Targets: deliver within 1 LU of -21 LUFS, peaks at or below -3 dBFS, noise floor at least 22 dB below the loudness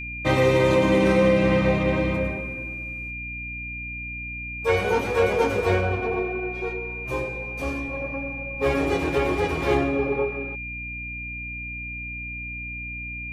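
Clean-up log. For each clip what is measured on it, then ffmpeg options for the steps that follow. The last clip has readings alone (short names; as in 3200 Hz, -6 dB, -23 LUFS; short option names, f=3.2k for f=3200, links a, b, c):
hum 60 Hz; harmonics up to 300 Hz; hum level -36 dBFS; steady tone 2400 Hz; tone level -32 dBFS; loudness -24.5 LUFS; peak -8.0 dBFS; loudness target -21.0 LUFS
-> -af "bandreject=f=60:t=h:w=4,bandreject=f=120:t=h:w=4,bandreject=f=180:t=h:w=4,bandreject=f=240:t=h:w=4,bandreject=f=300:t=h:w=4"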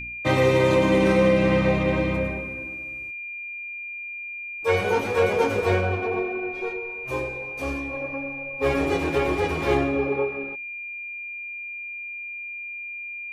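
hum none; steady tone 2400 Hz; tone level -32 dBFS
-> -af "bandreject=f=2.4k:w=30"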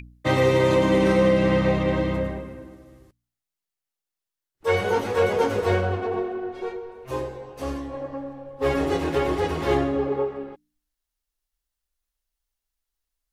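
steady tone none; loudness -23.5 LUFS; peak -8.5 dBFS; loudness target -21.0 LUFS
-> -af "volume=2.5dB"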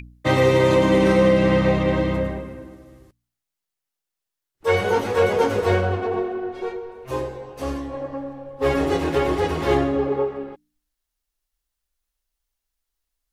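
loudness -21.0 LUFS; peak -6.0 dBFS; noise floor -85 dBFS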